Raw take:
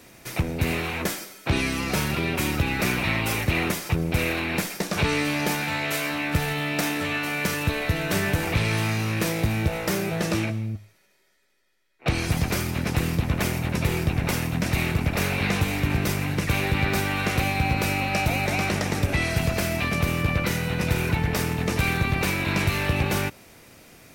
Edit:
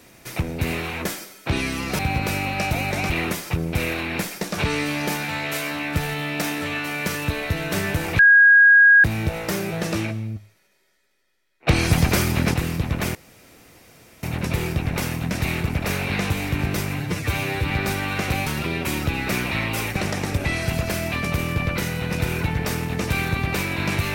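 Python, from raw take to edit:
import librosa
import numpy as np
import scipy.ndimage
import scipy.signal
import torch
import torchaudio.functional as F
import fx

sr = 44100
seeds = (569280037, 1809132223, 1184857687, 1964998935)

y = fx.edit(x, sr, fx.swap(start_s=1.99, length_s=1.5, other_s=17.54, other_length_s=1.11),
    fx.bleep(start_s=8.58, length_s=0.85, hz=1640.0, db=-8.5),
    fx.clip_gain(start_s=12.07, length_s=0.86, db=6.0),
    fx.insert_room_tone(at_s=13.54, length_s=1.08),
    fx.stretch_span(start_s=16.31, length_s=0.47, factor=1.5), tone=tone)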